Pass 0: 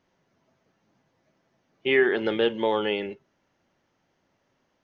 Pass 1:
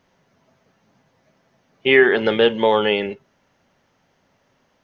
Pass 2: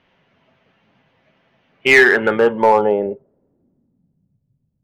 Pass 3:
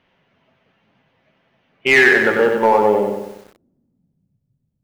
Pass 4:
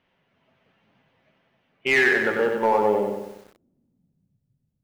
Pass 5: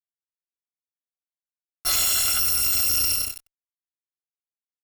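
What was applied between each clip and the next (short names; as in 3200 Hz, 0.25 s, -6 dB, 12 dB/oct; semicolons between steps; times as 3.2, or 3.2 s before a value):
bell 330 Hz -7.5 dB 0.25 oct; gain +8.5 dB
low-pass sweep 2900 Hz -> 130 Hz, 1.71–4.43; in parallel at -7 dB: wavefolder -7 dBFS; on the sum: gain -2.5 dB
lo-fi delay 94 ms, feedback 55%, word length 7-bit, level -4.5 dB; gain -2 dB
AGC gain up to 4 dB; gain -7 dB
FFT order left unsorted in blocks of 256 samples; fuzz box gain 35 dB, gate -40 dBFS; gain -6.5 dB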